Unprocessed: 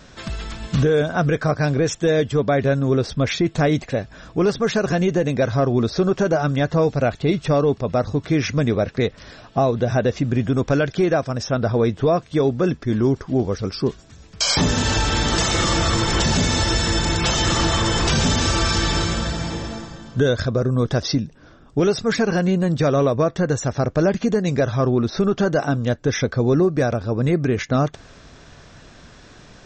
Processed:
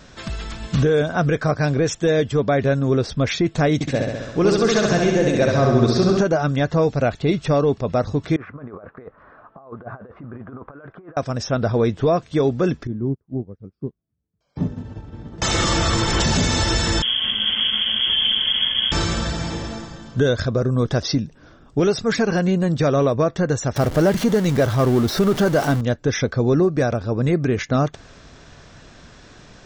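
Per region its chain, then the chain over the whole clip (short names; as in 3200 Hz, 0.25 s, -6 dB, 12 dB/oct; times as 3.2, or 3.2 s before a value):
3.74–6.21 high shelf 4800 Hz +6 dB + flutter echo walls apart 11.4 m, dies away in 1.2 s
8.36–11.17 low shelf 210 Hz -11.5 dB + negative-ratio compressor -26 dBFS, ratio -0.5 + ladder low-pass 1400 Hz, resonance 55%
12.87–15.42 band-pass 150 Hz, Q 0.76 + upward expander 2.5:1, over -38 dBFS
17.02–18.92 minimum comb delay 0.57 ms + bell 1900 Hz -10 dB 1.9 oct + inverted band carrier 3300 Hz
23.76–25.81 zero-crossing step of -24 dBFS + notch 2500 Hz, Q 15
whole clip: dry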